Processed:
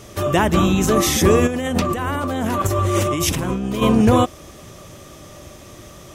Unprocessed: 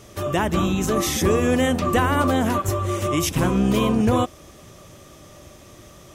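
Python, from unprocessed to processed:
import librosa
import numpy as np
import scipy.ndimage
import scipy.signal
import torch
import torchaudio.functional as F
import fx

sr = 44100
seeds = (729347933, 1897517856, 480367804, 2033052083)

y = fx.over_compress(x, sr, threshold_db=-26.0, ratio=-1.0, at=(1.46, 3.81), fade=0.02)
y = F.gain(torch.from_numpy(y), 5.0).numpy()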